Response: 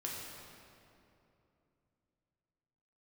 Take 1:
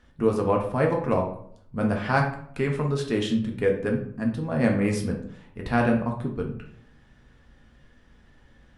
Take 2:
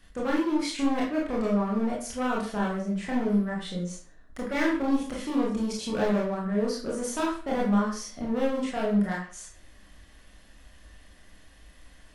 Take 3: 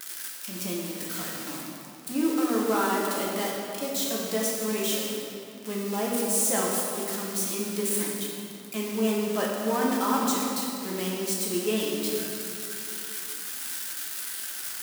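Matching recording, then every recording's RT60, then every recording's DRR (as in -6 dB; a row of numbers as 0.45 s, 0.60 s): 3; 0.65 s, 0.45 s, 2.8 s; 0.5 dB, -4.0 dB, -4.0 dB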